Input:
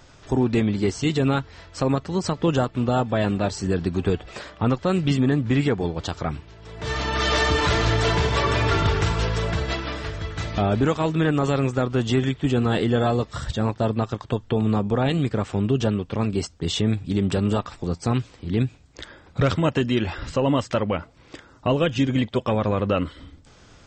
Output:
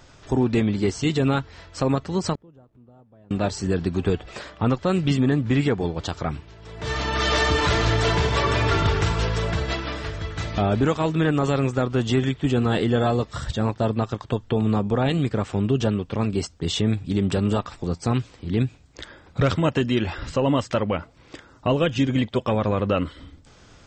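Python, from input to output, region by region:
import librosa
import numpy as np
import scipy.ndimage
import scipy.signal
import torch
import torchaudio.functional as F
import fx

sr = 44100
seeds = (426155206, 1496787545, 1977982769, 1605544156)

y = fx.chain(x, sr, fx.zero_step(step_db=-34.5),
    fx.tilt_shelf(db=9.0, hz=1400.0),
    fx.gate_flip(shuts_db=-20.0, range_db=-38), at=(2.35, 3.31))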